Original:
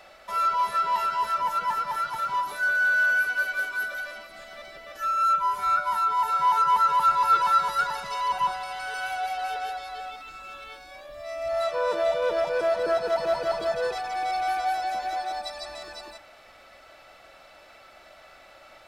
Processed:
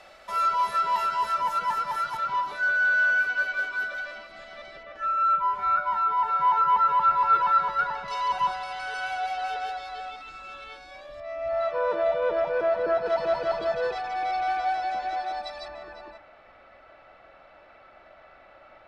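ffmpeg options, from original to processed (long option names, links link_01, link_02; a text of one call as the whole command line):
ffmpeg -i in.wav -af "asetnsamples=nb_out_samples=441:pad=0,asendcmd='2.17 lowpass f 4600;4.83 lowpass f 2400;8.08 lowpass f 6000;11.2 lowpass f 2300;13.06 lowpass f 3900;15.68 lowpass f 2000',lowpass=11000" out.wav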